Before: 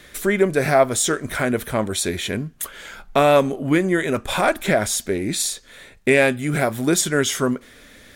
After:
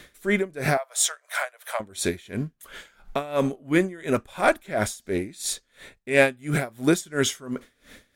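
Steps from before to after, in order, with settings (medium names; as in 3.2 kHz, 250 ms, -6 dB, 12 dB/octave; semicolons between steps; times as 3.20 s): 0.77–1.80 s: steep high-pass 580 Hz 48 dB/octave; logarithmic tremolo 2.9 Hz, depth 23 dB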